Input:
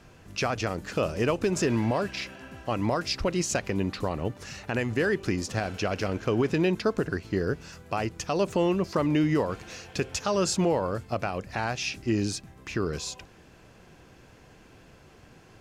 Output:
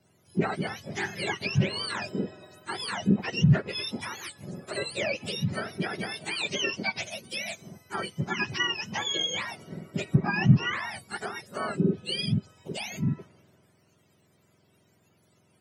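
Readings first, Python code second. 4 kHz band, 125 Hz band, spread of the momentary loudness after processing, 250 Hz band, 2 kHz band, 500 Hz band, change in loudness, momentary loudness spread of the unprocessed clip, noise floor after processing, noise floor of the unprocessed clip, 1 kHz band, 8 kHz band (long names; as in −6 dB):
+5.0 dB, +3.5 dB, 13 LU, −2.0 dB, +2.5 dB, −8.0 dB, −1.0 dB, 10 LU, −66 dBFS, −54 dBFS, −3.5 dB, −5.0 dB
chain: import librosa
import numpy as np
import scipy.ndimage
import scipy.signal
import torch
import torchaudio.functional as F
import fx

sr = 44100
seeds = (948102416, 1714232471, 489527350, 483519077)

y = fx.octave_mirror(x, sr, pivot_hz=1000.0)
y = fx.env_lowpass_down(y, sr, base_hz=2500.0, full_db=-22.0)
y = fx.band_widen(y, sr, depth_pct=40)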